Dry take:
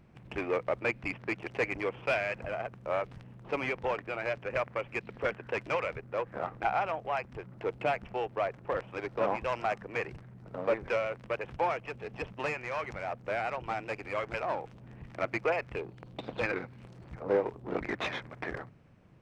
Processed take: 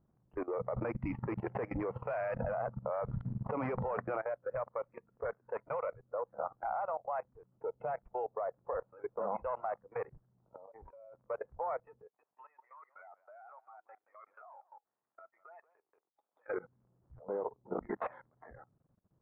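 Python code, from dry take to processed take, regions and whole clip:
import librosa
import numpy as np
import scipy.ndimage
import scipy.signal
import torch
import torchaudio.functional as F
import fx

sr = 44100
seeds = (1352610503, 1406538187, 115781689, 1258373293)

y = fx.chain(x, sr, fx.high_shelf(hz=3800.0, db=12.0),
    fx.resample_bad(factor=6, down='none', up='hold'),
    fx.env_flatten(amount_pct=50), at=(0.6, 4.21))
y = fx.chain(y, sr, fx.cheby_ripple(hz=3400.0, ripple_db=6),
    fx.over_compress(threshold_db=-43.0, ratio=-1.0), at=(10.34, 11.24))
y = fx.chain(y, sr, fx.highpass(hz=810.0, slope=12),
    fx.level_steps(step_db=22),
    fx.echo_single(ms=183, db=-7.0), at=(12.07, 16.48))
y = fx.noise_reduce_blind(y, sr, reduce_db=15)
y = scipy.signal.sosfilt(scipy.signal.butter(4, 1300.0, 'lowpass', fs=sr, output='sos'), y)
y = fx.level_steps(y, sr, step_db=19)
y = F.gain(torch.from_numpy(y), 3.0).numpy()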